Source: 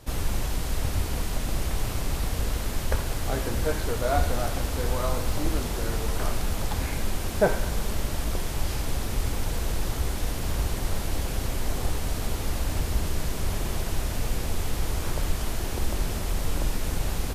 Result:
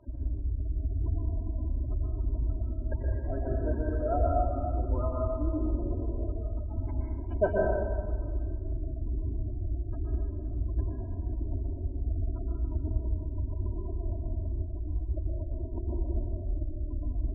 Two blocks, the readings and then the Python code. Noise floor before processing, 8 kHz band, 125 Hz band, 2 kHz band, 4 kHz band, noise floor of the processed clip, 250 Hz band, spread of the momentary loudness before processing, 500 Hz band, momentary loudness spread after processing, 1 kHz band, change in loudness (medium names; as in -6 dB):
-31 dBFS, under -40 dB, -1.5 dB, -14.0 dB, under -40 dB, -37 dBFS, -3.5 dB, 3 LU, -2.5 dB, 6 LU, -5.5 dB, -3.5 dB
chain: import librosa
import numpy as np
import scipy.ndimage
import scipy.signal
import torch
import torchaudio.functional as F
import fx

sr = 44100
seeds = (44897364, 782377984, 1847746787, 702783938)

y = fx.high_shelf(x, sr, hz=3000.0, db=-11.5)
y = y + 0.63 * np.pad(y, (int(3.1 * sr / 1000.0), 0))[:len(y)]
y = fx.spec_gate(y, sr, threshold_db=-20, keep='strong')
y = scipy.signal.sosfilt(scipy.signal.butter(2, 47.0, 'highpass', fs=sr, output='sos'), y)
y = fx.high_shelf(y, sr, hz=6300.0, db=-10.0)
y = fx.rev_plate(y, sr, seeds[0], rt60_s=1.6, hf_ratio=0.65, predelay_ms=110, drr_db=-2.5)
y = F.gain(torch.from_numpy(y), -6.5).numpy()